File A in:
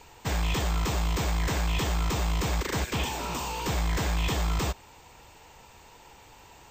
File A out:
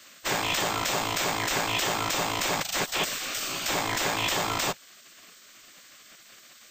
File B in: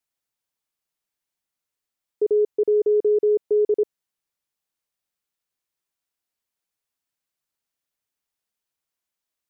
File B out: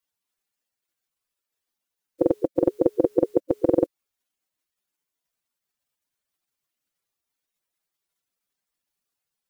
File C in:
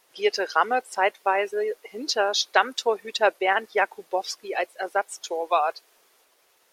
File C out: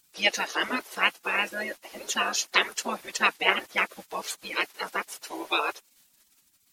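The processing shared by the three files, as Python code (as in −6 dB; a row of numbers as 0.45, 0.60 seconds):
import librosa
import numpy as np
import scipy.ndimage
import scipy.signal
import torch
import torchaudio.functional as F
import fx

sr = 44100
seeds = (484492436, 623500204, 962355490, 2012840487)

y = fx.spec_gate(x, sr, threshold_db=-15, keep='weak')
y = y * 10.0 ** (-30 / 20.0) / np.sqrt(np.mean(np.square(y)))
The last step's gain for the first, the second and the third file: +7.0, +22.5, +9.0 decibels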